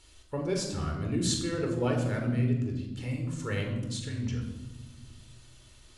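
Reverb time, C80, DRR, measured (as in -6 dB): 1.1 s, 7.5 dB, 2.0 dB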